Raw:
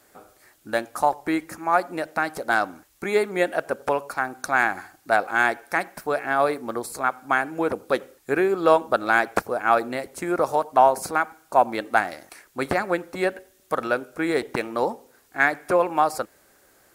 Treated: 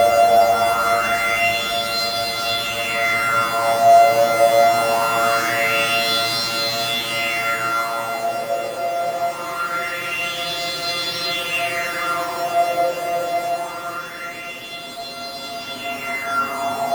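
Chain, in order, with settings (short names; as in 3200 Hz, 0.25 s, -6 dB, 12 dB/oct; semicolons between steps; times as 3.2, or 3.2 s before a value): sample sorter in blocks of 64 samples; Paulstretch 18×, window 0.50 s, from 5.13; LFO bell 0.23 Hz 590–4200 Hz +15 dB; gain -2 dB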